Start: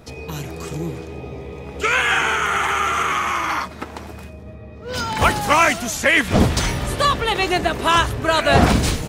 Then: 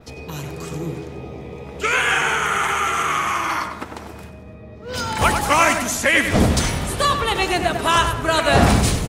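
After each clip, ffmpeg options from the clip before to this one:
ffmpeg -i in.wav -filter_complex "[0:a]asplit=2[link_01][link_02];[link_02]adelay=97,lowpass=frequency=2400:poles=1,volume=-6dB,asplit=2[link_03][link_04];[link_04]adelay=97,lowpass=frequency=2400:poles=1,volume=0.47,asplit=2[link_05][link_06];[link_06]adelay=97,lowpass=frequency=2400:poles=1,volume=0.47,asplit=2[link_07][link_08];[link_08]adelay=97,lowpass=frequency=2400:poles=1,volume=0.47,asplit=2[link_09][link_10];[link_10]adelay=97,lowpass=frequency=2400:poles=1,volume=0.47,asplit=2[link_11][link_12];[link_12]adelay=97,lowpass=frequency=2400:poles=1,volume=0.47[link_13];[link_01][link_03][link_05][link_07][link_09][link_11][link_13]amix=inputs=7:normalize=0,adynamicequalizer=threshold=0.01:dfrequency=9600:dqfactor=1:tfrequency=9600:tqfactor=1:attack=5:release=100:ratio=0.375:range=3:mode=boostabove:tftype=bell,volume=-1.5dB" out.wav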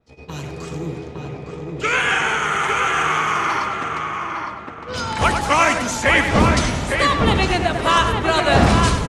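ffmpeg -i in.wav -filter_complex "[0:a]lowpass=7100,agate=range=-20dB:threshold=-33dB:ratio=16:detection=peak,asplit=2[link_01][link_02];[link_02]adelay=859,lowpass=frequency=2100:poles=1,volume=-3dB,asplit=2[link_03][link_04];[link_04]adelay=859,lowpass=frequency=2100:poles=1,volume=0.3,asplit=2[link_05][link_06];[link_06]adelay=859,lowpass=frequency=2100:poles=1,volume=0.3,asplit=2[link_07][link_08];[link_08]adelay=859,lowpass=frequency=2100:poles=1,volume=0.3[link_09];[link_01][link_03][link_05][link_07][link_09]amix=inputs=5:normalize=0" out.wav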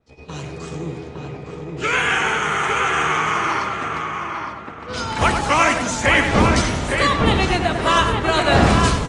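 ffmpeg -i in.wav -af "volume=-1dB" -ar 22050 -c:a aac -b:a 32k out.aac

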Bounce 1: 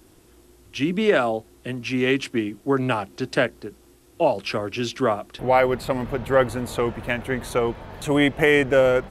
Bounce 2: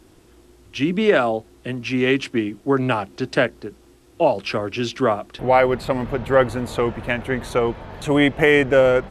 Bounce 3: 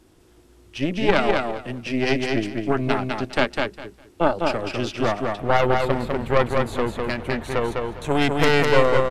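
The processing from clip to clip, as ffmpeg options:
ffmpeg -i in.wav -af "highshelf=frequency=10000:gain=-11.5,volume=2.5dB" out.wav
ffmpeg -i in.wav -filter_complex "[0:a]aeval=exprs='0.891*(cos(1*acos(clip(val(0)/0.891,-1,1)))-cos(1*PI/2))+0.398*(cos(4*acos(clip(val(0)/0.891,-1,1)))-cos(4*PI/2))+0.1*(cos(6*acos(clip(val(0)/0.891,-1,1)))-cos(6*PI/2))+0.0316*(cos(8*acos(clip(val(0)/0.891,-1,1)))-cos(8*PI/2))':channel_layout=same,asplit=2[link_01][link_02];[link_02]aecho=0:1:203|406|609:0.668|0.127|0.0241[link_03];[link_01][link_03]amix=inputs=2:normalize=0,volume=-4.5dB" out.wav

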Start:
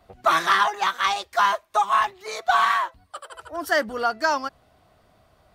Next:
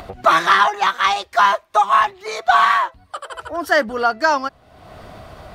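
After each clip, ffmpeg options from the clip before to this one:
ffmpeg -i in.wav -af "highshelf=frequency=6400:gain=-8,acompressor=mode=upward:threshold=-30dB:ratio=2.5,volume=6dB" out.wav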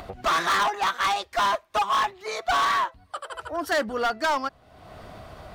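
ffmpeg -i in.wav -af "asoftclip=type=hard:threshold=-15dB,volume=-4.5dB" out.wav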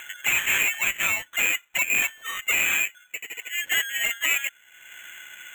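ffmpeg -i in.wav -af "lowpass=frequency=3000:width_type=q:width=0.5098,lowpass=frequency=3000:width_type=q:width=0.6013,lowpass=frequency=3000:width_type=q:width=0.9,lowpass=frequency=3000:width_type=q:width=2.563,afreqshift=-3500,acrusher=samples=9:mix=1:aa=0.000001" out.wav

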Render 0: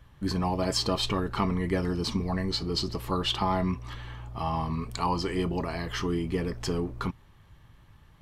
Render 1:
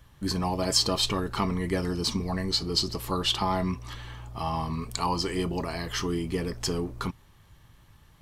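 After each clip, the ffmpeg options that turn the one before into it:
ffmpeg -i in.wav -af "bass=frequency=250:gain=-1,treble=frequency=4000:gain=8" out.wav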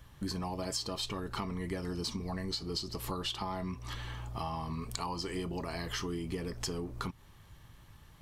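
ffmpeg -i in.wav -af "acompressor=threshold=-34dB:ratio=6" out.wav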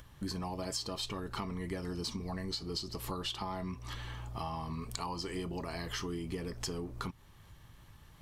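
ffmpeg -i in.wav -af "acompressor=mode=upward:threshold=-50dB:ratio=2.5,volume=-1.5dB" out.wav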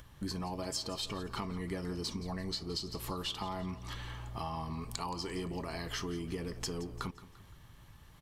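ffmpeg -i in.wav -af "aecho=1:1:172|344|516|688:0.158|0.0682|0.0293|0.0126" out.wav

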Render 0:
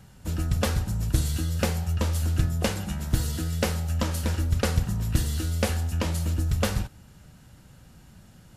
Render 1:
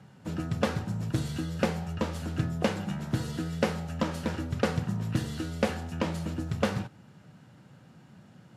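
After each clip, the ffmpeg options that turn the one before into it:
ffmpeg -i in.wav -af "highpass=frequency=120:width=0.5412,highpass=frequency=120:width=1.3066,aemphasis=mode=reproduction:type=75fm" out.wav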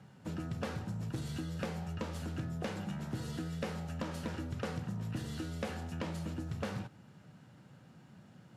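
ffmpeg -i in.wav -af "asoftclip=type=tanh:threshold=-22dB,acompressor=threshold=-32dB:ratio=3,volume=-3.5dB" out.wav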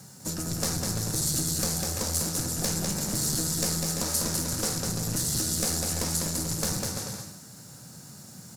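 ffmpeg -i in.wav -af "aecho=1:1:200|340|438|506.6|554.6:0.631|0.398|0.251|0.158|0.1,aeval=exprs='clip(val(0),-1,0.0112)':channel_layout=same,aexciter=amount=8.5:drive=7.8:freq=4500,volume=6dB" out.wav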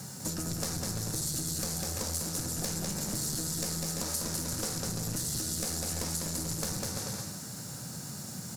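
ffmpeg -i in.wav -af "acompressor=threshold=-40dB:ratio=3,volume=5.5dB" out.wav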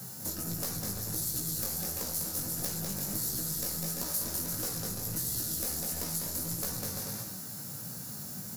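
ffmpeg -i in.wav -filter_complex "[0:a]flanger=delay=16:depth=5.3:speed=1.5,acrossover=split=290[link_01][link_02];[link_02]aexciter=amount=4.5:drive=4.7:freq=11000[link_03];[link_01][link_03]amix=inputs=2:normalize=0" out.wav

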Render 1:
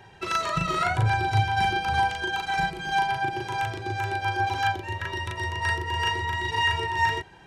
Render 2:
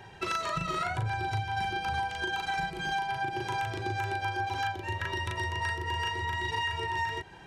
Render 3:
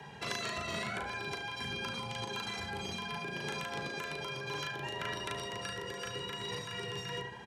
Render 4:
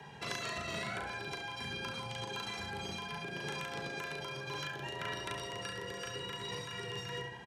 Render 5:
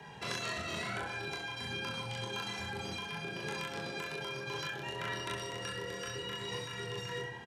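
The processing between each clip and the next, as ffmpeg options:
ffmpeg -i in.wav -af "acompressor=threshold=-30dB:ratio=6,volume=1dB" out.wav
ffmpeg -i in.wav -filter_complex "[0:a]asplit=2[link_01][link_02];[link_02]adelay=73,lowpass=frequency=3900:poles=1,volume=-8.5dB,asplit=2[link_03][link_04];[link_04]adelay=73,lowpass=frequency=3900:poles=1,volume=0.49,asplit=2[link_05][link_06];[link_06]adelay=73,lowpass=frequency=3900:poles=1,volume=0.49,asplit=2[link_07][link_08];[link_08]adelay=73,lowpass=frequency=3900:poles=1,volume=0.49,asplit=2[link_09][link_10];[link_10]adelay=73,lowpass=frequency=3900:poles=1,volume=0.49,asplit=2[link_11][link_12];[link_12]adelay=73,lowpass=frequency=3900:poles=1,volume=0.49[link_13];[link_01][link_03][link_05][link_07][link_09][link_11][link_13]amix=inputs=7:normalize=0,afreqshift=36,afftfilt=real='re*lt(hypot(re,im),0.1)':imag='im*lt(hypot(re,im),0.1)':win_size=1024:overlap=0.75" out.wav
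ffmpeg -i in.wav -af "aecho=1:1:68|173:0.316|0.126,volume=-2dB" out.wav
ffmpeg -i in.wav -filter_complex "[0:a]asplit=2[link_01][link_02];[link_02]adelay=25,volume=-4dB[link_03];[link_01][link_03]amix=inputs=2:normalize=0" out.wav

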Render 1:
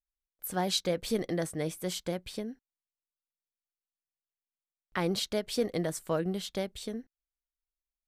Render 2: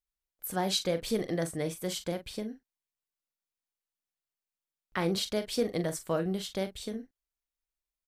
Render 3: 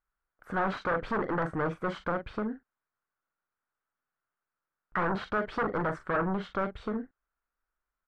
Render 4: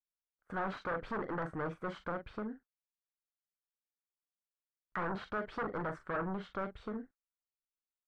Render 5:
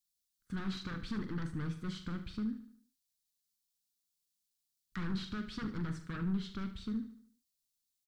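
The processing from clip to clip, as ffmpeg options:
ffmpeg -i in.wav -filter_complex "[0:a]asplit=2[link_01][link_02];[link_02]adelay=42,volume=-10.5dB[link_03];[link_01][link_03]amix=inputs=2:normalize=0" out.wav
ffmpeg -i in.wav -filter_complex "[0:a]asplit=2[link_01][link_02];[link_02]aeval=exprs='0.15*sin(PI/2*5.01*val(0)/0.15)':channel_layout=same,volume=-6.5dB[link_03];[link_01][link_03]amix=inputs=2:normalize=0,lowpass=frequency=1400:width_type=q:width=3.9,volume=-7.5dB" out.wav
ffmpeg -i in.wav -af "agate=range=-18dB:threshold=-49dB:ratio=16:detection=peak,volume=-7.5dB" out.wav
ffmpeg -i in.wav -af "firequalizer=gain_entry='entry(220,0);entry(570,-28);entry(1200,-16);entry(4000,6)':delay=0.05:min_phase=1,aecho=1:1:74|148|222|296|370:0.251|0.113|0.0509|0.0229|0.0103,volume=6dB" out.wav

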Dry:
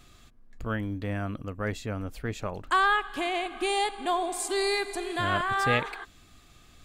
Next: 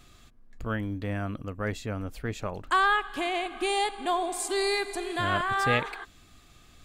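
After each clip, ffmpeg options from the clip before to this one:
ffmpeg -i in.wav -af anull out.wav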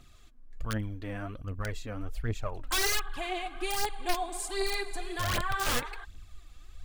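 ffmpeg -i in.wav -af "aeval=exprs='(mod(8.41*val(0)+1,2)-1)/8.41':channel_layout=same,aphaser=in_gain=1:out_gain=1:delay=4.2:decay=0.56:speed=1.3:type=triangular,asubboost=boost=4.5:cutoff=95,volume=-6dB" out.wav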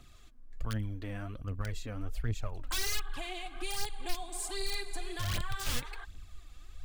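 ffmpeg -i in.wav -filter_complex "[0:a]acrossover=split=200|2800[link_01][link_02][link_03];[link_02]acompressor=threshold=-42dB:ratio=6[link_04];[link_03]asoftclip=type=tanh:threshold=-29.5dB[link_05];[link_01][link_04][link_05]amix=inputs=3:normalize=0" out.wav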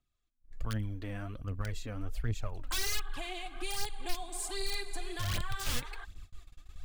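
ffmpeg -i in.wav -af "agate=range=-27dB:threshold=-45dB:ratio=16:detection=peak" out.wav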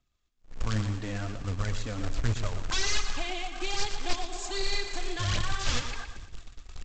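ffmpeg -i in.wav -af "aresample=16000,acrusher=bits=3:mode=log:mix=0:aa=0.000001,aresample=44100,aecho=1:1:118|236|354|472|590:0.335|0.141|0.0591|0.0248|0.0104,volume=5dB" out.wav

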